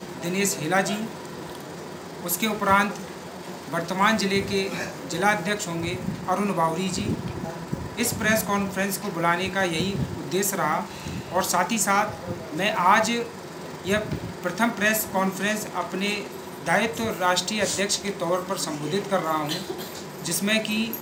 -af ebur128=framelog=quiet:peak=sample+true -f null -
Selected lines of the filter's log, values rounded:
Integrated loudness:
  I:         -24.8 LUFS
  Threshold: -35.1 LUFS
Loudness range:
  LRA:         2.2 LU
  Threshold: -45.0 LUFS
  LRA low:   -26.0 LUFS
  LRA high:  -23.8 LUFS
Sample peak:
  Peak:       -5.1 dBFS
True peak:
  Peak:       -5.1 dBFS